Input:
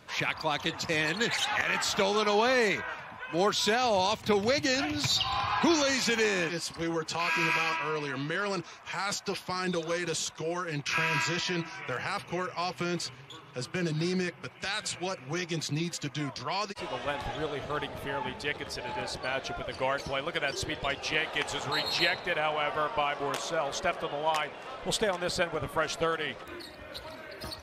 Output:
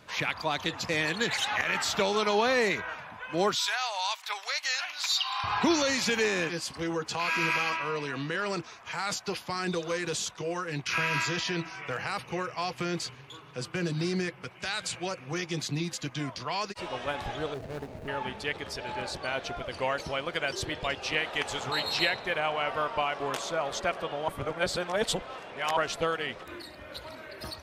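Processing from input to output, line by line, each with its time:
3.55–5.44 s: high-pass 910 Hz 24 dB/octave
17.54–18.08 s: median filter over 41 samples
24.28–25.77 s: reverse

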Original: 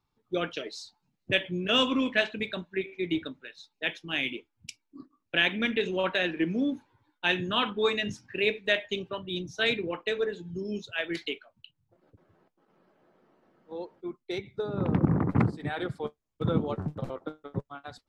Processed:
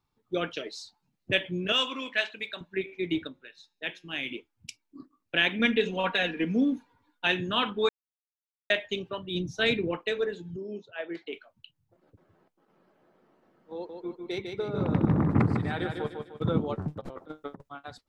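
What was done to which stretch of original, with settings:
1.72–2.61 s: high-pass 1.1 kHz 6 dB/octave
3.27–4.31 s: feedback comb 180 Hz, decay 0.45 s, mix 40%
5.59–7.27 s: comb 4.2 ms
7.89–8.70 s: mute
9.35–9.98 s: bass shelf 300 Hz +7.5 dB
10.56–11.33 s: band-pass filter 590 Hz, Q 0.82
13.74–16.42 s: feedback delay 151 ms, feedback 40%, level -5 dB
17.01–17.69 s: compressor with a negative ratio -40 dBFS, ratio -0.5

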